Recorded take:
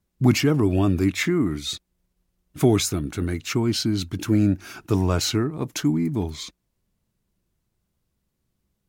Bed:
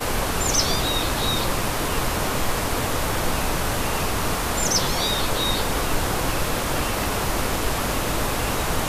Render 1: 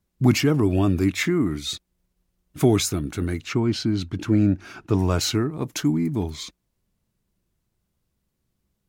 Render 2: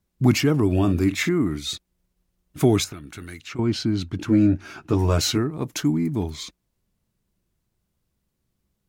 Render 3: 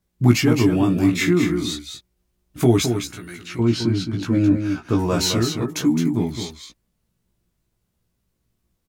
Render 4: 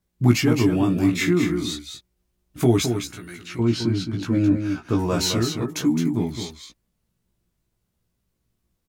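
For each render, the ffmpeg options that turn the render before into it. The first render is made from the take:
ffmpeg -i in.wav -filter_complex "[0:a]asettb=1/sr,asplit=3[link_01][link_02][link_03];[link_01]atrim=end=3.444[link_04];[link_02]atrim=start=3.44:end=4.99,asetpts=PTS-STARTPTS,afade=type=in:duration=0.004:curve=qsin,afade=type=out:start_time=1.546:duration=0.004:curve=qsin,aemphasis=mode=reproduction:type=50fm[link_05];[link_03]atrim=start=4.986[link_06];[link_04][link_05]acrossfade=duration=0.004:curve1=hsin:curve2=qsin[link_07];[link_07][link_06]acrossfade=duration=0.004:curve1=qsin:curve2=hsin" out.wav
ffmpeg -i in.wav -filter_complex "[0:a]asettb=1/sr,asplit=3[link_01][link_02][link_03];[link_01]atrim=end=0.674[link_04];[link_02]atrim=start=0.67:end=1.29,asetpts=PTS-STARTPTS,afade=type=in:duration=0.004:curve=qsin,afade=type=out:start_time=0.616:duration=0.004:curve=qsin,asplit=2[link_05][link_06];[link_06]adelay=45,volume=-12dB[link_07];[link_05][link_07]amix=inputs=2:normalize=0,atrim=end_sample=27342[link_08];[link_03]atrim=start=1.286[link_09];[link_04][link_08]acrossfade=duration=0.004:curve1=hsin:curve2=qsin[link_10];[link_10][link_09]acrossfade=duration=0.004:curve1=qsin:curve2=hsin,asettb=1/sr,asplit=3[link_11][link_12][link_13];[link_11]atrim=end=2.844[link_14];[link_12]atrim=start=2.84:end=3.59,asetpts=PTS-STARTPTS,afade=type=in:duration=0.004:curve=qsin,afade=type=out:start_time=0.746:duration=0.004:curve=qsin,acrossover=split=1300|2900[link_15][link_16][link_17];[link_15]acompressor=threshold=-38dB:ratio=4[link_18];[link_16]acompressor=threshold=-41dB:ratio=4[link_19];[link_17]acompressor=threshold=-42dB:ratio=4[link_20];[link_18][link_19][link_20]amix=inputs=3:normalize=0[link_21];[link_13]atrim=start=3.586[link_22];[link_14][link_21]acrossfade=duration=0.004:curve1=hsin:curve2=qsin[link_23];[link_23][link_22]acrossfade=duration=0.004:curve1=qsin:curve2=hsin,asettb=1/sr,asplit=3[link_24][link_25][link_26];[link_24]atrim=end=4.274[link_27];[link_25]atrim=start=4.27:end=5.38,asetpts=PTS-STARTPTS,afade=type=in:duration=0.004:curve=qsin,afade=type=out:start_time=1.106:duration=0.004:curve=qsin,asplit=2[link_28][link_29];[link_29]adelay=13,volume=-5dB[link_30];[link_28][link_30]amix=inputs=2:normalize=0,atrim=end_sample=48951[link_31];[link_26]atrim=start=5.376[link_32];[link_27][link_31]acrossfade=duration=0.004:curve1=hsin:curve2=qsin[link_33];[link_33][link_32]acrossfade=duration=0.004:curve1=qsin:curve2=hsin" out.wav
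ffmpeg -i in.wav -filter_complex "[0:a]asplit=2[link_01][link_02];[link_02]adelay=17,volume=-2.5dB[link_03];[link_01][link_03]amix=inputs=2:normalize=0,asplit=2[link_04][link_05];[link_05]aecho=0:1:214:0.447[link_06];[link_04][link_06]amix=inputs=2:normalize=0" out.wav
ffmpeg -i in.wav -af "volume=-2dB" out.wav

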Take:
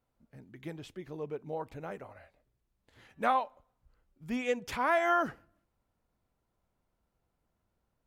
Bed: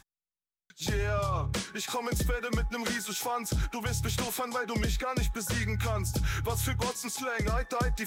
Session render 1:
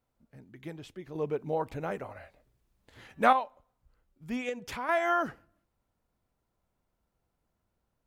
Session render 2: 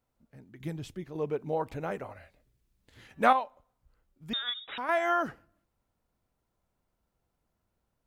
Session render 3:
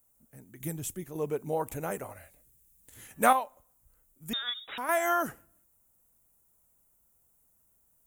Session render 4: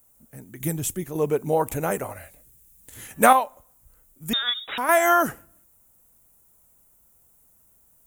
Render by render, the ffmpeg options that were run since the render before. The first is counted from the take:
ffmpeg -i in.wav -filter_complex "[0:a]asettb=1/sr,asplit=3[link_01][link_02][link_03];[link_01]atrim=end=1.154[link_04];[link_02]atrim=start=1.15:end=3.33,asetpts=PTS-STARTPTS,afade=type=in:duration=0.004:curve=qsin,afade=type=out:start_time=2.176:duration=0.004:curve=qsin,acontrast=67[link_05];[link_03]atrim=start=3.326[link_06];[link_04][link_05]acrossfade=duration=0.004:curve1=hsin:curve2=qsin[link_07];[link_07][link_06]acrossfade=duration=0.004:curve1=qsin:curve2=hsin,asettb=1/sr,asplit=3[link_08][link_09][link_10];[link_08]atrim=end=4.494[link_11];[link_09]atrim=start=4.49:end=4.89,asetpts=PTS-STARTPTS,afade=type=in:duration=0.004:curve=qsin,afade=type=out:start_time=0.396:duration=0.004:curve=qsin,acompressor=threshold=-35dB:ratio=2:attack=3.2:release=140:knee=1:detection=peak[link_12];[link_10]atrim=start=4.886[link_13];[link_11][link_12]acrossfade=duration=0.004:curve1=hsin:curve2=qsin[link_14];[link_14][link_13]acrossfade=duration=0.004:curve1=qsin:curve2=hsin" out.wav
ffmpeg -i in.wav -filter_complex "[0:a]asettb=1/sr,asplit=3[link_01][link_02][link_03];[link_01]atrim=end=0.604[link_04];[link_02]atrim=start=0.6:end=1.04,asetpts=PTS-STARTPTS,afade=type=in:duration=0.004:curve=qsin,afade=type=out:start_time=0.436:duration=0.004:curve=qsin,bass=frequency=250:gain=10,treble=frequency=4000:gain=6[link_05];[link_03]atrim=start=1.036[link_06];[link_04][link_05]acrossfade=duration=0.004:curve1=hsin:curve2=qsin[link_07];[link_07][link_06]acrossfade=duration=0.004:curve1=qsin:curve2=hsin,asettb=1/sr,asplit=3[link_08][link_09][link_10];[link_08]atrim=end=2.144[link_11];[link_09]atrim=start=2.14:end=3.11,asetpts=PTS-STARTPTS,afade=type=in:duration=0.004:curve=qsin,afade=type=out:start_time=0.966:duration=0.004:curve=qsin,equalizer=frequency=810:width_type=o:width=2:gain=-7[link_12];[link_10]atrim=start=3.106[link_13];[link_11][link_12]acrossfade=duration=0.004:curve1=hsin:curve2=qsin[link_14];[link_14][link_13]acrossfade=duration=0.004:curve1=qsin:curve2=hsin,asettb=1/sr,asplit=3[link_15][link_16][link_17];[link_15]atrim=end=4.334[link_18];[link_16]atrim=start=4.33:end=4.78,asetpts=PTS-STARTPTS,afade=type=in:duration=0.004:curve=qsin,afade=type=out:start_time=0.446:duration=0.004:curve=qsin,lowpass=frequency=3300:width_type=q:width=0.5098,lowpass=frequency=3300:width_type=q:width=0.6013,lowpass=frequency=3300:width_type=q:width=0.9,lowpass=frequency=3300:width_type=q:width=2.563,afreqshift=-3900[link_19];[link_17]atrim=start=4.776[link_20];[link_18][link_19]acrossfade=duration=0.004:curve1=hsin:curve2=qsin[link_21];[link_21][link_20]acrossfade=duration=0.004:curve1=qsin:curve2=hsin" out.wav
ffmpeg -i in.wav -af "aexciter=amount=12.1:drive=4:freq=6700" out.wav
ffmpeg -i in.wav -af "volume=9dB,alimiter=limit=-3dB:level=0:latency=1" out.wav

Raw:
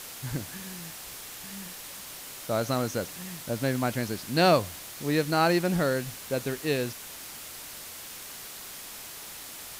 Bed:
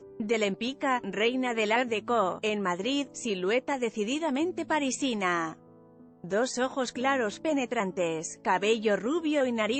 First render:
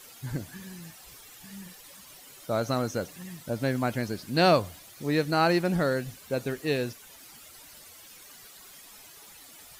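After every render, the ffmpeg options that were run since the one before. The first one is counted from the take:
ffmpeg -i in.wav -af "afftdn=noise_reduction=12:noise_floor=-43" out.wav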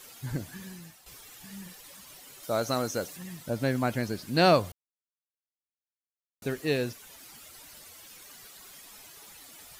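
ffmpeg -i in.wav -filter_complex "[0:a]asettb=1/sr,asplit=3[link_01][link_02][link_03];[link_01]atrim=end=2.434[link_04];[link_02]atrim=start=2.43:end=3.17,asetpts=PTS-STARTPTS,afade=type=in:duration=0.004:curve=qsin,afade=type=out:start_time=0.736:duration=0.004:curve=qsin,bass=frequency=250:gain=-5,treble=frequency=4000:gain=5[link_05];[link_03]atrim=start=3.166[link_06];[link_04][link_05]acrossfade=duration=0.004:curve1=hsin:curve2=qsin[link_07];[link_07][link_06]acrossfade=duration=0.004:curve1=qsin:curve2=hsin,asplit=4[link_08][link_09][link_10][link_11];[link_08]atrim=end=1.06,asetpts=PTS-STARTPTS,afade=type=out:start_time=0.66:duration=0.4:silence=0.334965[link_12];[link_09]atrim=start=1.06:end=4.72,asetpts=PTS-STARTPTS,afade=type=in:duration=0.004:curve=hsin:silence=0.334965,afade=type=out:start_time=3.656:duration=0.004:curve=hsin[link_13];[link_10]atrim=start=4.72:end=6.42,asetpts=PTS-STARTPTS,volume=0[link_14];[link_11]atrim=start=6.42,asetpts=PTS-STARTPTS,afade=type=in:duration=0.004:curve=hsin[link_15];[link_12][link_13][link_14][link_15]concat=n=4:v=0:a=1" out.wav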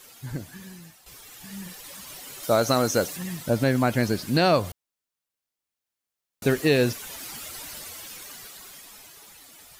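ffmpeg -i in.wav -af "dynaudnorm=framelen=220:gausssize=17:maxgain=13dB,alimiter=limit=-10dB:level=0:latency=1:release=212" out.wav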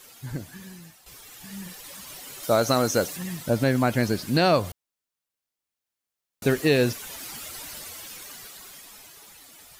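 ffmpeg -i in.wav -af anull out.wav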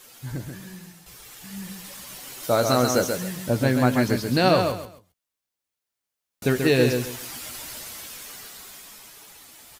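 ffmpeg -i in.wav -filter_complex "[0:a]asplit=2[link_01][link_02];[link_02]adelay=16,volume=-10.5dB[link_03];[link_01][link_03]amix=inputs=2:normalize=0,aecho=1:1:134|268|402:0.531|0.133|0.0332" out.wav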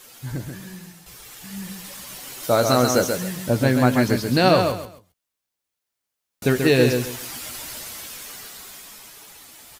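ffmpeg -i in.wav -af "volume=2.5dB" out.wav

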